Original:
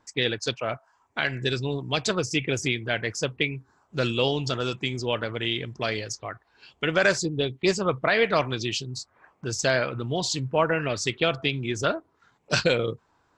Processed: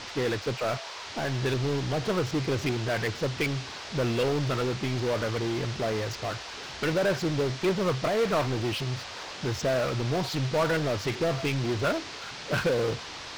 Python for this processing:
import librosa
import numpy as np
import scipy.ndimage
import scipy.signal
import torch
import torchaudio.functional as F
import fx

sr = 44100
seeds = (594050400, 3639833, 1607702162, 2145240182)

y = fx.filter_lfo_lowpass(x, sr, shape='saw_up', hz=2.6, low_hz=620.0, high_hz=2500.0, q=0.8)
y = fx.power_curve(y, sr, exponent=0.5)
y = fx.dmg_noise_band(y, sr, seeds[0], low_hz=420.0, high_hz=5400.0, level_db=-33.0)
y = y * librosa.db_to_amplitude(-8.0)